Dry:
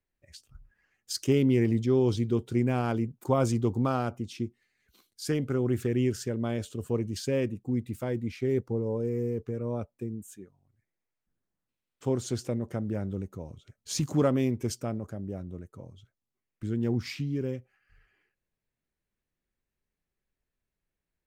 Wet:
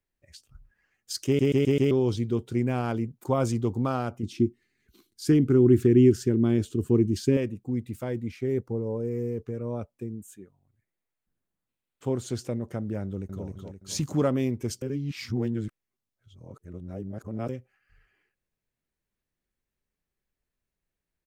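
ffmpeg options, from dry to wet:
ffmpeg -i in.wav -filter_complex "[0:a]asettb=1/sr,asplit=3[link_01][link_02][link_03];[link_01]atrim=end=4.234[link_04];[link_02]atrim=start=4.23:end=7.37,asetpts=PTS-STARTPTS,afade=type=in:duration=0.004:curve=qsin,afade=type=out:start_time=3.136:duration=0.004:curve=qsin,lowshelf=frequency=440:width_type=q:width=3:gain=6.5[link_05];[link_03]atrim=start=7.366[link_06];[link_04][link_05]acrossfade=duration=0.004:curve1=hsin:curve2=qsin[link_07];[link_07][link_06]acrossfade=duration=0.004:curve1=qsin:curve2=hsin,asettb=1/sr,asplit=3[link_08][link_09][link_10];[link_08]atrim=end=8.314[link_11];[link_09]atrim=start=8.31:end=9.11,asetpts=PTS-STARTPTS,afade=type=in:duration=0.004:curve=qsin,afade=type=out:start_time=0.796:duration=0.004:curve=qsin,equalizer=frequency=3800:width_type=o:width=1.6:gain=-4[link_12];[link_10]atrim=start=9.106[link_13];[link_11][link_12]acrossfade=duration=0.004:curve1=hsin:curve2=qsin[link_14];[link_14][link_13]acrossfade=duration=0.004:curve1=qsin:curve2=hsin,asettb=1/sr,asplit=3[link_15][link_16][link_17];[link_15]atrim=end=10.314[link_18];[link_16]atrim=start=10.31:end=12.3,asetpts=PTS-STARTPTS,afade=type=in:duration=0.004:curve=qsin,afade=type=out:start_time=1.986:duration=0.004:curve=qsin,equalizer=frequency=5500:width=2.6:gain=-5.5[link_19];[link_17]atrim=start=12.296[link_20];[link_18][link_19]acrossfade=duration=0.004:curve1=hsin:curve2=qsin[link_21];[link_21][link_20]acrossfade=duration=0.004:curve1=qsin:curve2=hsin,asplit=2[link_22][link_23];[link_23]afade=type=in:start_time=13.03:duration=0.01,afade=type=out:start_time=13.45:duration=0.01,aecho=0:1:260|520|780|1040|1300|1560:0.668344|0.300755|0.13534|0.0609028|0.0274063|0.0123328[link_24];[link_22][link_24]amix=inputs=2:normalize=0,asplit=8[link_25][link_26][link_27][link_28][link_29][link_30][link_31][link_32];[link_25]atrim=end=1.392[link_33];[link_26]atrim=start=1.258:end=1.392[link_34];[link_27]atrim=start=1.258:end=1.392[link_35];[link_28]atrim=start=1.258:end=1.392[link_36];[link_29]atrim=start=1.258:end=1.392[link_37];[link_30]atrim=start=1.908:end=14.822[link_38];[link_31]atrim=start=14.818:end=17.492,asetpts=PTS-STARTPTS,areverse[link_39];[link_32]atrim=start=17.488[link_40];[link_33][link_34]acrossfade=duration=0.004:curve1=hsin:curve2=hsin[link_41];[link_41][link_35]acrossfade=duration=0.004:curve1=hsin:curve2=hsin[link_42];[link_42][link_36]acrossfade=duration=0.004:curve1=hsin:curve2=hsin[link_43];[link_43][link_37]acrossfade=duration=0.004:curve1=hsin:curve2=hsin[link_44];[link_44][link_38]acrossfade=duration=0.004:curve1=hsin:curve2=hsin[link_45];[link_45][link_39]acrossfade=duration=0.004:curve1=hsin:curve2=hsin[link_46];[link_46][link_40]acrossfade=duration=0.004:curve1=hsin:curve2=hsin" out.wav

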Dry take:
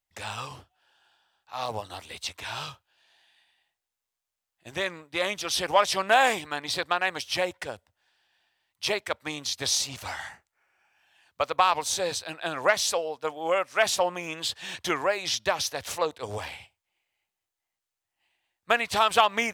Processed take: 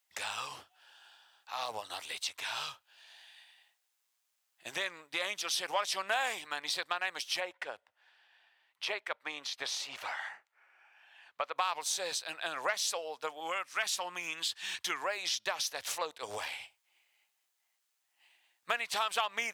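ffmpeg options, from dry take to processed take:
ffmpeg -i in.wav -filter_complex "[0:a]asplit=3[link_01][link_02][link_03];[link_01]afade=type=out:start_time=7.39:duration=0.02[link_04];[link_02]bass=frequency=250:gain=-9,treble=frequency=4000:gain=-15,afade=type=in:start_time=7.39:duration=0.02,afade=type=out:start_time=11.55:duration=0.02[link_05];[link_03]afade=type=in:start_time=11.55:duration=0.02[link_06];[link_04][link_05][link_06]amix=inputs=3:normalize=0,asettb=1/sr,asplit=3[link_07][link_08][link_09];[link_07]atrim=end=13.404[link_10];[link_08]atrim=start=13.4:end=15.02,asetpts=PTS-STARTPTS,afade=type=in:duration=0.004:curve=qsin,afade=type=out:start_time=1.616:duration=0.004:curve=qsin,equalizer=frequency=570:width=1.5:gain=-8.5[link_11];[link_09]atrim=start=15.016[link_12];[link_10][link_11]acrossfade=duration=0.004:curve1=hsin:curve2=qsin[link_13];[link_13][link_12]acrossfade=duration=0.004:curve1=qsin:curve2=hsin,highpass=frequency=1100:poles=1,acompressor=threshold=-50dB:ratio=2,volume=8dB" out.wav

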